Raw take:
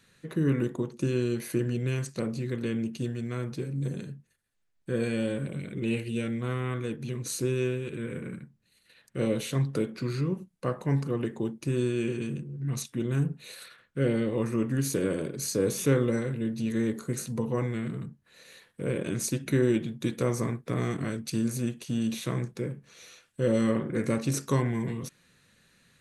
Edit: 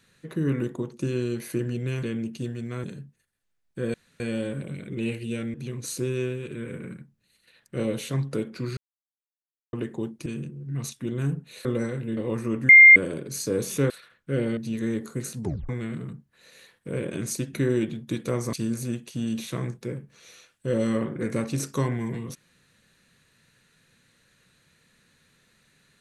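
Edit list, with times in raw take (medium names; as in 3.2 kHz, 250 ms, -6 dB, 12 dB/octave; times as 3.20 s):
2.03–2.63 s: delete
3.44–3.95 s: delete
5.05 s: insert room tone 0.26 s
6.39–6.96 s: delete
10.19–11.15 s: mute
11.68–12.19 s: delete
13.58–14.25 s: swap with 15.98–16.50 s
14.77–15.04 s: bleep 2.11 kHz -6.5 dBFS
17.35 s: tape stop 0.27 s
20.46–21.27 s: delete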